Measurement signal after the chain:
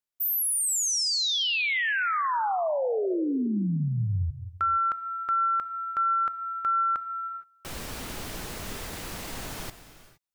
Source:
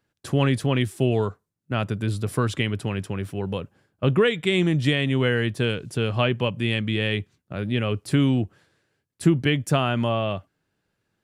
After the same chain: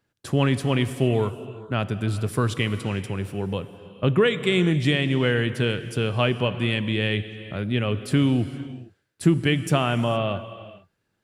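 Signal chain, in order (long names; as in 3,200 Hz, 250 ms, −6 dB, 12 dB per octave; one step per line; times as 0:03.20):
reverb whose tail is shaped and stops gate 490 ms flat, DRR 11.5 dB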